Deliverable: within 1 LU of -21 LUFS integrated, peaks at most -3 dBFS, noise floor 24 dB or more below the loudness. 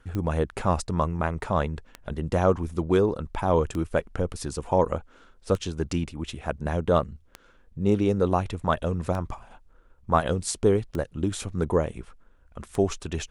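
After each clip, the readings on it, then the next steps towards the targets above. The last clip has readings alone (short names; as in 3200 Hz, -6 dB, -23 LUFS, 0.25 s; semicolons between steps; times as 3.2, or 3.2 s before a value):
clicks 8; loudness -26.5 LUFS; peak -6.5 dBFS; loudness target -21.0 LUFS
-> de-click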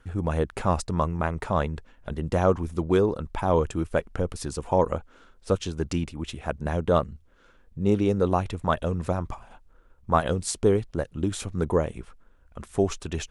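clicks 0; loudness -26.5 LUFS; peak -6.5 dBFS; loudness target -21.0 LUFS
-> gain +5.5 dB; limiter -3 dBFS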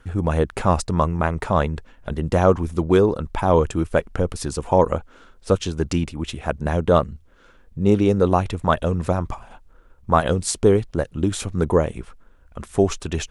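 loudness -21.5 LUFS; peak -3.0 dBFS; noise floor -52 dBFS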